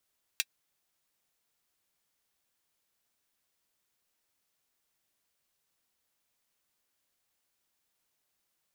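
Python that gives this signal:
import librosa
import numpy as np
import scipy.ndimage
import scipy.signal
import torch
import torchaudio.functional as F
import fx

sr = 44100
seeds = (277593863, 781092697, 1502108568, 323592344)

y = fx.drum_hat(sr, length_s=0.24, from_hz=2400.0, decay_s=0.05)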